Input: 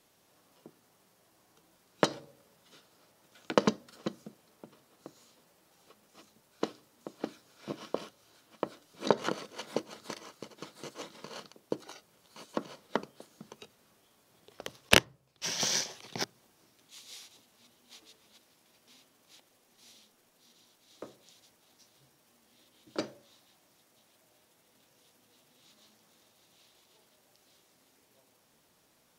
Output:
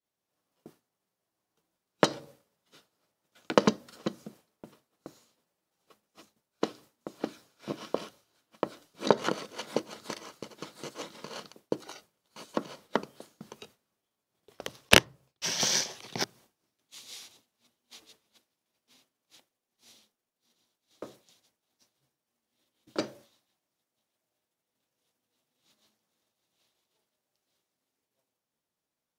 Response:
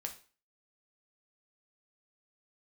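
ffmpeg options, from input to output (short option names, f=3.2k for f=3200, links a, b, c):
-af "agate=range=-33dB:threshold=-53dB:ratio=3:detection=peak,volume=3dB"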